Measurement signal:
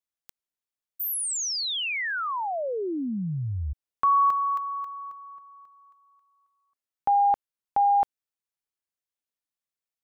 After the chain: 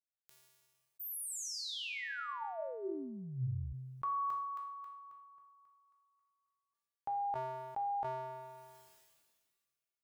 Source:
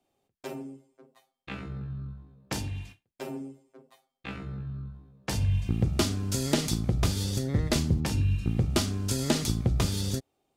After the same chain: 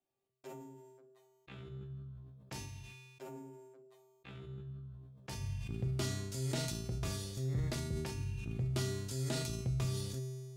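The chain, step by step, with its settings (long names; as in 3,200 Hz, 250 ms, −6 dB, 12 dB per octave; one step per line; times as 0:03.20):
tuned comb filter 130 Hz, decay 0.97 s, harmonics odd, mix 90%
level that may fall only so fast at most 31 dB per second
level +3 dB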